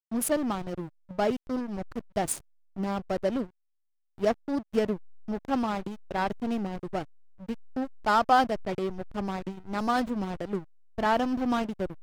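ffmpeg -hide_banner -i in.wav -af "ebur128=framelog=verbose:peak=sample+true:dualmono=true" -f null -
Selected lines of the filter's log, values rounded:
Integrated loudness:
  I:         -27.0 LUFS
  Threshold: -37.2 LUFS
Loudness range:
  LRA:         3.8 LU
  Threshold: -47.5 LUFS
  LRA low:   -29.4 LUFS
  LRA high:  -25.6 LUFS
Sample peak:
  Peak:      -10.2 dBFS
True peak:
  Peak:      -10.1 dBFS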